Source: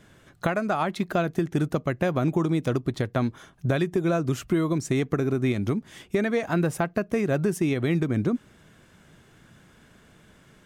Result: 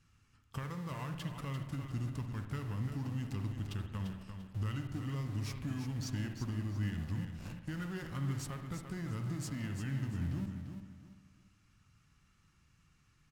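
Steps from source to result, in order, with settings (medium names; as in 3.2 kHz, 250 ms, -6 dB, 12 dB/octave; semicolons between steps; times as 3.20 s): amplifier tone stack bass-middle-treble 6-0-2; in parallel at -8 dB: Schmitt trigger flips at -56.5 dBFS; on the sum: tape speed -20%; feedback delay 344 ms, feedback 29%, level -8 dB; spring tank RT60 1 s, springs 58 ms, chirp 35 ms, DRR 7 dB; trim +2 dB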